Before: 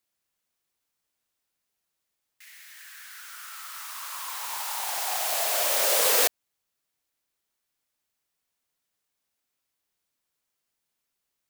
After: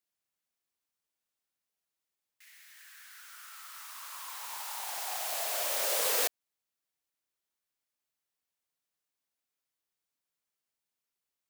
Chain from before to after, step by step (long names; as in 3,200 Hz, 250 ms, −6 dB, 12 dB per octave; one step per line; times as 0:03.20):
low-shelf EQ 100 Hz −5 dB
level −7.5 dB